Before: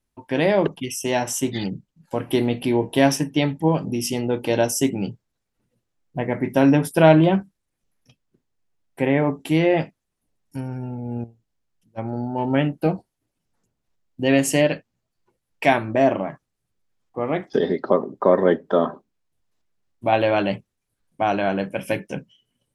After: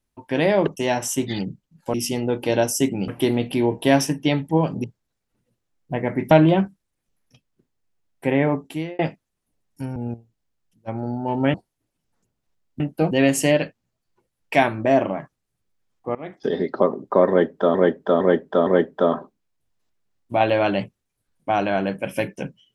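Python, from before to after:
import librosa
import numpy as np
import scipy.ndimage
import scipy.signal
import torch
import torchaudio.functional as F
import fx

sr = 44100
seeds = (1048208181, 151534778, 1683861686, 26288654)

y = fx.edit(x, sr, fx.cut(start_s=0.77, length_s=0.25),
    fx.move(start_s=3.95, length_s=1.14, to_s=2.19),
    fx.cut(start_s=6.56, length_s=0.5),
    fx.fade_out_span(start_s=9.24, length_s=0.5),
    fx.cut(start_s=10.71, length_s=0.35),
    fx.move(start_s=12.64, length_s=0.31, to_s=14.21),
    fx.fade_in_from(start_s=17.25, length_s=0.53, floor_db=-17.5),
    fx.repeat(start_s=18.39, length_s=0.46, count=4), tone=tone)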